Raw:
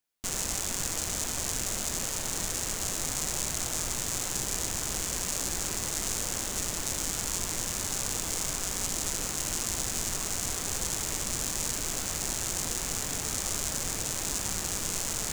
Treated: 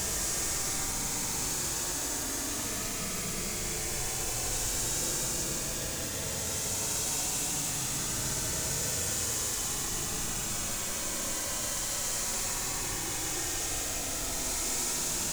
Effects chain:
mains-hum notches 50/100 Hz
extreme stretch with random phases 41×, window 0.05 s, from 0:13.89

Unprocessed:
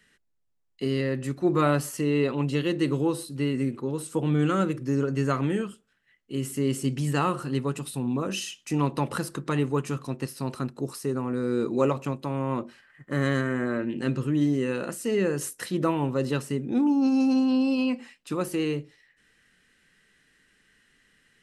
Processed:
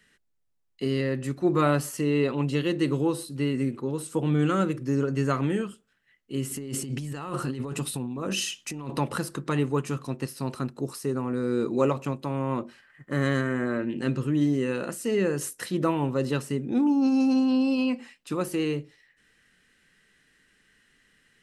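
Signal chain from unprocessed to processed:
0:06.51–0:08.98: compressor whose output falls as the input rises −32 dBFS, ratio −1

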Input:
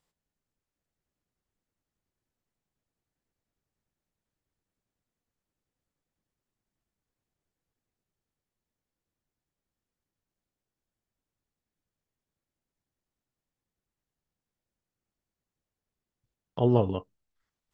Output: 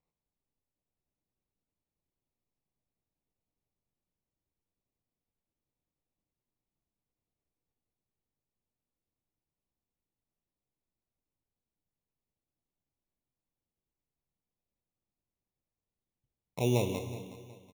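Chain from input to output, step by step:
Butterworth low-pass 1,200 Hz 36 dB per octave
in parallel at −2 dB: brickwall limiter −20.5 dBFS, peak gain reduction 11.5 dB
on the sum: decimation without filtering 14×
on a send: repeating echo 369 ms, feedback 32%, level −15.5 dB
on the sum: dense smooth reverb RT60 1.6 s, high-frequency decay 0.95×, DRR 7.5 dB
level −9 dB

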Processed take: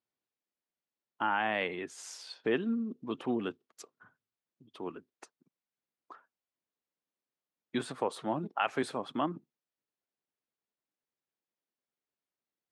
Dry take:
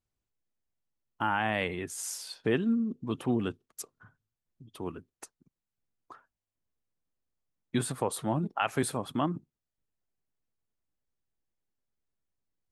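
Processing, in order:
band-pass filter 250–4,800 Hz
level −1 dB

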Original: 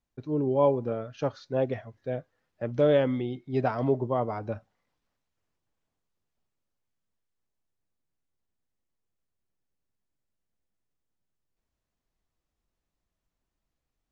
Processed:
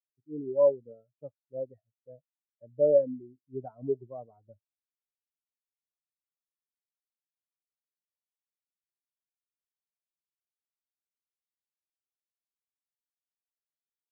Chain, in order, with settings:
every bin expanded away from the loudest bin 2.5 to 1
level −2 dB

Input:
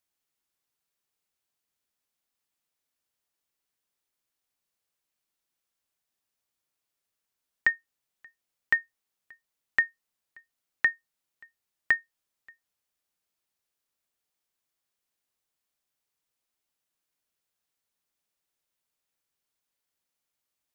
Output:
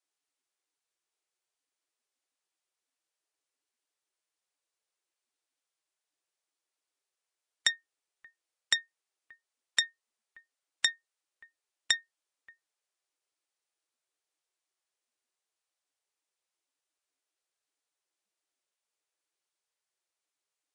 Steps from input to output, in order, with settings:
phase distortion by the signal itself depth 0.28 ms
level −3 dB
Ogg Vorbis 48 kbit/s 22,050 Hz

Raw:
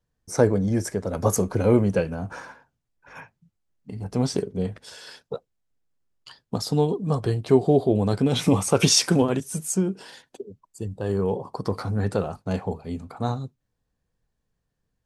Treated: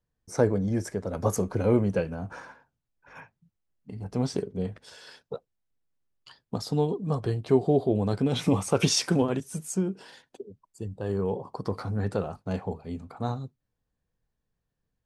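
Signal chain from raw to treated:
high-shelf EQ 5,900 Hz −6 dB
level −4 dB

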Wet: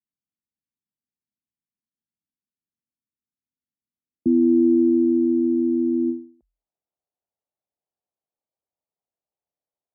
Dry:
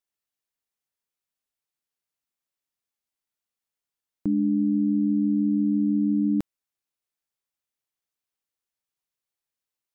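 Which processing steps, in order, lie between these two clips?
frequency shifter +42 Hz
low-pass filter sweep 230 Hz → 700 Hz, 0:03.86–0:05.96
every ending faded ahead of time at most 140 dB per second

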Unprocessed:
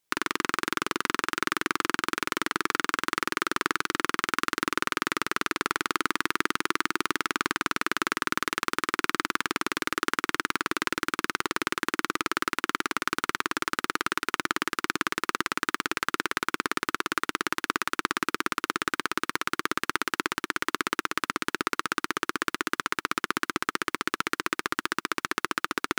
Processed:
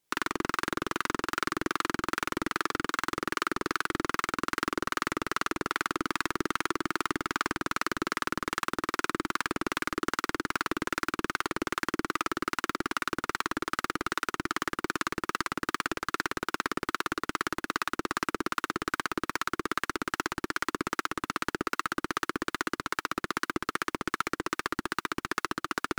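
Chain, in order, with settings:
in parallel at −7 dB: sine wavefolder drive 13 dB, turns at −3.5 dBFS
on the sum: two-band tremolo in antiphase 2.5 Hz, depth 50%, crossover 670 Hz
level −8 dB

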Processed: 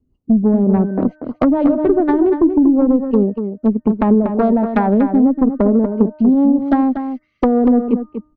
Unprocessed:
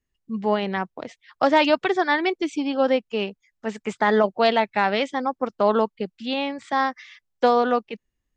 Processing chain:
adaptive Wiener filter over 25 samples
hum removal 304.9 Hz, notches 6
rotating-speaker cabinet horn 5 Hz, later 0.6 Hz, at 0:02.00
graphic EQ with 15 bands 100 Hz +7 dB, 250 Hz +11 dB, 2,500 Hz −9 dB
downward compressor 6 to 1, threshold −23 dBFS, peak gain reduction 11.5 dB
harmonic generator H 2 −8 dB, 5 −12 dB, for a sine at −11.5 dBFS
treble cut that deepens with the level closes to 450 Hz, closed at −17 dBFS
slap from a distant wall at 41 metres, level −8 dB
level +8.5 dB

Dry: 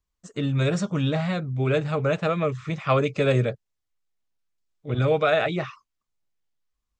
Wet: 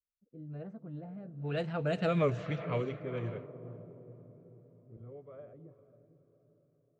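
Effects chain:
source passing by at 0:02.15, 33 m/s, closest 5.8 metres
rotating-speaker cabinet horn 1.1 Hz
on a send: feedback delay with all-pass diffusion 497 ms, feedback 54%, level −11.5 dB
on the sum: low-pass that shuts in the quiet parts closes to 390 Hz, open at −27 dBFS

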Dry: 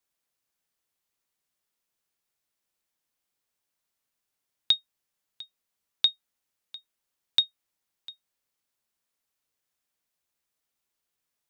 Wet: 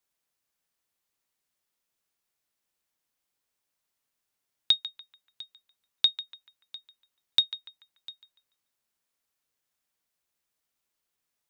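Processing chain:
feedback echo with a band-pass in the loop 145 ms, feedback 46%, band-pass 1,500 Hz, level −10.5 dB

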